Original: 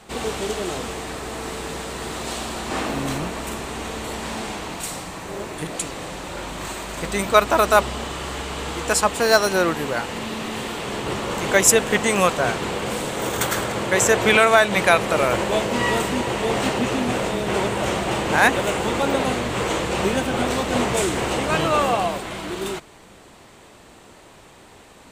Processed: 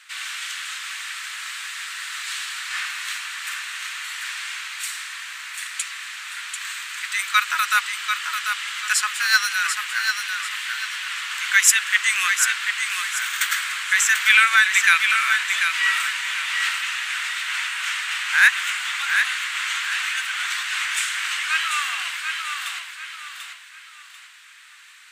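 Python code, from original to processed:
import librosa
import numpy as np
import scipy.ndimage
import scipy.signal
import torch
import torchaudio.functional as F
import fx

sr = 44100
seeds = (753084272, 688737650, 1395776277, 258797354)

y = scipy.signal.sosfilt(scipy.signal.butter(6, 1500.0, 'highpass', fs=sr, output='sos'), x)
y = fx.high_shelf(y, sr, hz=2900.0, db=-9.0)
y = fx.echo_feedback(y, sr, ms=741, feedback_pct=33, wet_db=-6.0)
y = F.gain(torch.from_numpy(y), 8.0).numpy()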